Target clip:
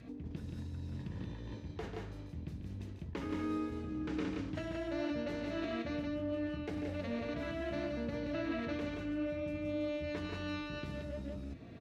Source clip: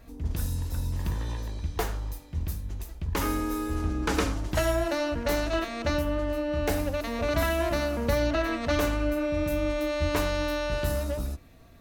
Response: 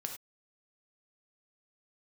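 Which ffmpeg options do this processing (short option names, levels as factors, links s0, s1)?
-filter_complex "[0:a]equalizer=f=1100:w=0.63:g=-11.5,asplit=2[s0][s1];[s1]alimiter=limit=0.075:level=0:latency=1,volume=1.33[s2];[s0][s2]amix=inputs=2:normalize=0,aecho=1:1:142.9|174.9:0.398|0.708,areverse,acompressor=threshold=0.0316:ratio=6,areverse,adynamicequalizer=threshold=0.00398:dfrequency=690:dqfactor=0.7:tfrequency=690:tqfactor=0.7:attack=5:release=100:ratio=0.375:range=2:mode=cutabove:tftype=bell,acompressor=mode=upward:threshold=0.0126:ratio=2.5,highpass=150,lowpass=2300"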